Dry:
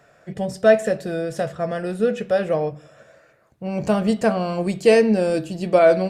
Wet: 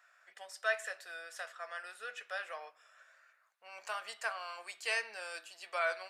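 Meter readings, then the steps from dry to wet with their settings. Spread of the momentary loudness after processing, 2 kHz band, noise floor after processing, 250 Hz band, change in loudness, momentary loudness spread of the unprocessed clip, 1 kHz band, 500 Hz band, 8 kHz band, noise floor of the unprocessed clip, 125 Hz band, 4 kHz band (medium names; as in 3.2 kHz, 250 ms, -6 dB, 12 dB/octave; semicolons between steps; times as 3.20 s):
14 LU, -7.0 dB, -70 dBFS, under -40 dB, -19.0 dB, 13 LU, -15.5 dB, -26.0 dB, -9.5 dB, -56 dBFS, under -40 dB, -9.0 dB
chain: ladder high-pass 1 kHz, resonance 30%; trim -3 dB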